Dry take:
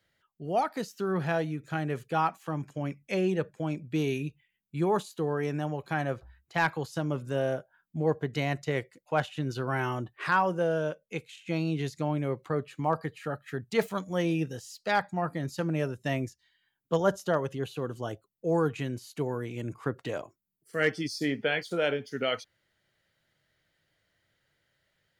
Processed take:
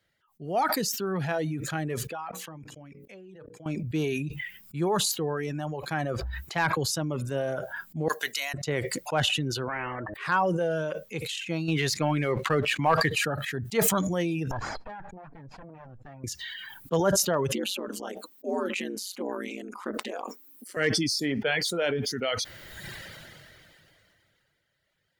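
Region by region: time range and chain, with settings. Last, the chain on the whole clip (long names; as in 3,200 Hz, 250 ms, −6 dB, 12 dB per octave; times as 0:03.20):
0:02.07–0:03.66: bass and treble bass −1 dB, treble −5 dB + mains-hum notches 60/120/180/240/300/360/420/480/540 Hz + output level in coarse steps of 23 dB
0:08.08–0:08.54: high-pass filter 230 Hz + first difference
0:09.68–0:10.14: elliptic low-pass filter 1,800 Hz, stop band 50 dB + hum removal 104.4 Hz, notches 6 + every bin compressed towards the loudest bin 4 to 1
0:11.68–0:13.10: parametric band 2,200 Hz +9.5 dB 1.7 octaves + leveller curve on the samples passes 1
0:14.51–0:16.24: lower of the sound and its delayed copy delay 1.2 ms + low-pass filter 1,400 Hz + downward compressor, threshold −43 dBFS
0:17.52–0:20.77: ring modulation 94 Hz + linear-phase brick-wall high-pass 200 Hz
whole clip: reverb reduction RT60 0.69 s; level that may fall only so fast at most 21 dB per second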